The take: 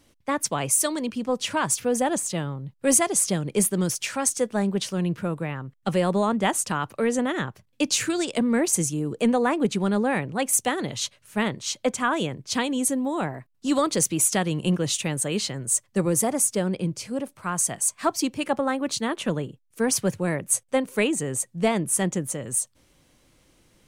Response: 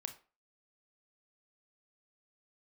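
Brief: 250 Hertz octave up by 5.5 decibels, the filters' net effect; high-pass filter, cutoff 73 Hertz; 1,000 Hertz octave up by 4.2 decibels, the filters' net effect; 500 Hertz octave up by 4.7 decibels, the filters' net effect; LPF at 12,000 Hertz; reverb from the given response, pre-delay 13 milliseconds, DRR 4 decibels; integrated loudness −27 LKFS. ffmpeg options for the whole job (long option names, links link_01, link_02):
-filter_complex "[0:a]highpass=73,lowpass=12000,equalizer=frequency=250:width_type=o:gain=6,equalizer=frequency=500:width_type=o:gain=3,equalizer=frequency=1000:width_type=o:gain=4,asplit=2[link_01][link_02];[1:a]atrim=start_sample=2205,adelay=13[link_03];[link_02][link_03]afir=irnorm=-1:irlink=0,volume=-1.5dB[link_04];[link_01][link_04]amix=inputs=2:normalize=0,volume=-7dB"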